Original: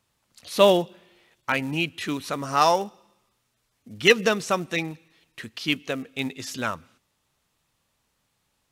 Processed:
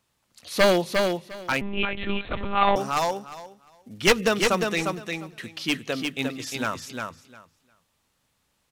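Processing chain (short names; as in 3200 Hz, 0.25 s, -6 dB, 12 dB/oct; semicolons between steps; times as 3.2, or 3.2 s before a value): one-sided fold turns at -13.5 dBFS; notches 50/100/150 Hz; feedback echo 0.353 s, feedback 16%, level -4.5 dB; 1.61–2.76 monotone LPC vocoder at 8 kHz 200 Hz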